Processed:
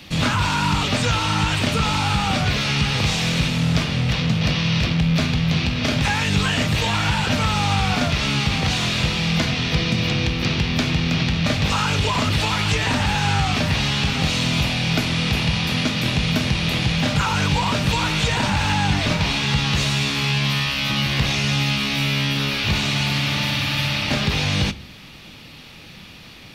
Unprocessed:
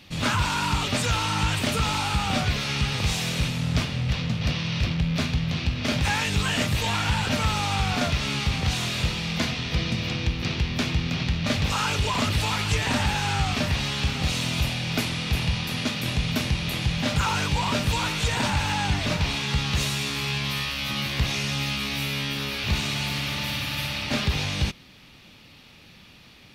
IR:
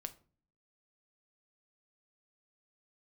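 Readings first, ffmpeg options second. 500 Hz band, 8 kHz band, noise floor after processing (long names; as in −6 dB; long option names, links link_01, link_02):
+5.0 dB, +3.0 dB, −42 dBFS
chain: -filter_complex "[0:a]acrossover=split=160|6900[link_01][link_02][link_03];[link_01]acompressor=threshold=-31dB:ratio=4[link_04];[link_02]acompressor=threshold=-28dB:ratio=4[link_05];[link_03]acompressor=threshold=-54dB:ratio=4[link_06];[link_04][link_05][link_06]amix=inputs=3:normalize=0,asplit=2[link_07][link_08];[1:a]atrim=start_sample=2205[link_09];[link_08][link_09]afir=irnorm=-1:irlink=0,volume=8dB[link_10];[link_07][link_10]amix=inputs=2:normalize=0"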